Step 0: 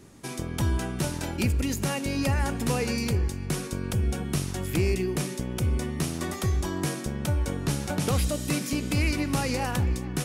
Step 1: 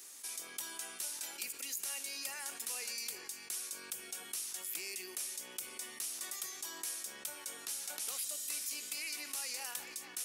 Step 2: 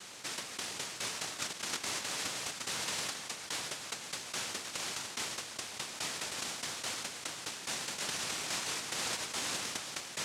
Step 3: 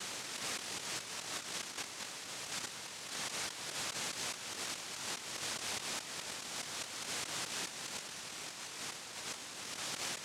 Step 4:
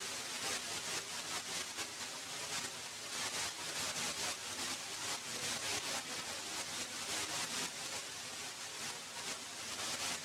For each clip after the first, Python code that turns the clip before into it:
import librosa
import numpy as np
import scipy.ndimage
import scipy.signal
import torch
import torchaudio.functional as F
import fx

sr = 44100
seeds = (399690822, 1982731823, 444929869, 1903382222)

y1 = scipy.signal.sosfilt(scipy.signal.butter(2, 310.0, 'highpass', fs=sr, output='sos'), x)
y1 = np.diff(y1, prepend=0.0)
y1 = fx.env_flatten(y1, sr, amount_pct=50)
y1 = y1 * 10.0 ** (-5.5 / 20.0)
y2 = fx.low_shelf(y1, sr, hz=290.0, db=-11.0)
y2 = fx.noise_vocoder(y2, sr, seeds[0], bands=1)
y2 = y2 * 10.0 ** (6.5 / 20.0)
y3 = fx.over_compress(y2, sr, threshold_db=-45.0, ratio=-1.0)
y3 = y3 * 10.0 ** (1.5 / 20.0)
y4 = fx.chorus_voices(y3, sr, voices=6, hz=0.34, base_ms=10, depth_ms=2.8, mix_pct=50)
y4 = y4 * 10.0 ** (3.5 / 20.0)